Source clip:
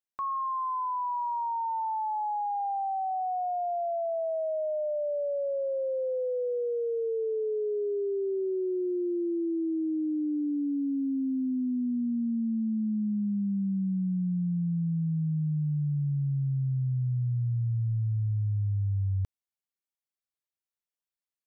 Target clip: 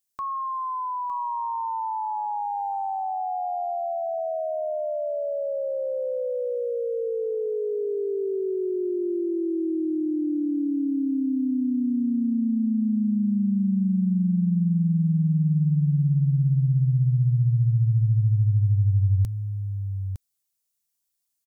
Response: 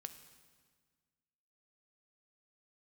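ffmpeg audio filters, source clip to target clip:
-af "bass=frequency=250:gain=6,treble=frequency=4000:gain=15,aecho=1:1:909:0.376,volume=1.5dB"

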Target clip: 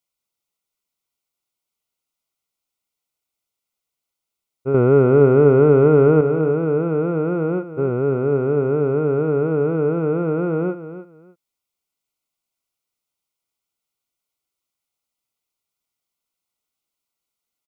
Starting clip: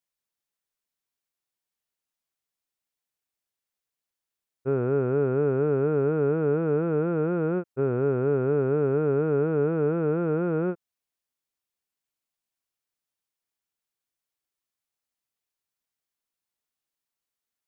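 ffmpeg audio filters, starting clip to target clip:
ffmpeg -i in.wav -filter_complex "[0:a]asettb=1/sr,asplit=3[link_01][link_02][link_03];[link_01]atrim=end=4.744[link_04];[link_02]atrim=start=4.74:end=6.21,asetpts=PTS-STARTPTS,afade=type=in:duration=0.004:curve=qsin,afade=type=out:start_time=1.466:duration=0.004:curve=qsin,acontrast=73[link_05];[link_03]atrim=start=6.206[link_06];[link_04][link_05]acrossfade=duration=0.004:curve1=hsin:curve2=qsin[link_07];[link_07][link_06]acrossfade=duration=0.004:curve1=qsin:curve2=hsin,asuperstop=centerf=1700:order=12:qfactor=4.3,aecho=1:1:303|606:0.237|0.0474,volume=4.5dB" out.wav

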